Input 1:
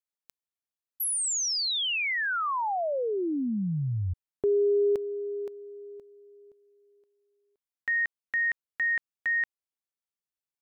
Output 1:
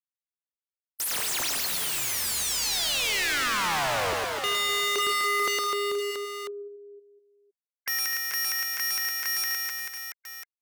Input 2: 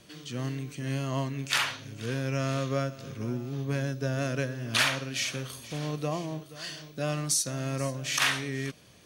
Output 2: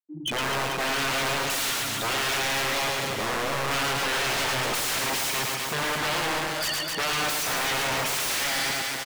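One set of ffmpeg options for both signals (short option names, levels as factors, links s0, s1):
-filter_complex "[0:a]bandreject=f=4300:w=18,afftfilt=real='re*gte(hypot(re,im),0.0251)':imag='im*gte(hypot(re,im),0.0251)':win_size=1024:overlap=0.75,tiltshelf=f=970:g=-3,acompressor=threshold=0.0316:ratio=2.5:attack=0.46:release=211:knee=1:detection=peak,aeval=exprs='(mod(56.2*val(0)+1,2)-1)/56.2':c=same,aecho=1:1:110|253|438.9|680.6|994.7:0.631|0.398|0.251|0.158|0.1,asplit=2[s0][s1];[s1]highpass=f=720:p=1,volume=14.1,asoftclip=type=tanh:threshold=0.0562[s2];[s0][s2]amix=inputs=2:normalize=0,lowpass=f=7700:p=1,volume=0.501,volume=1.88"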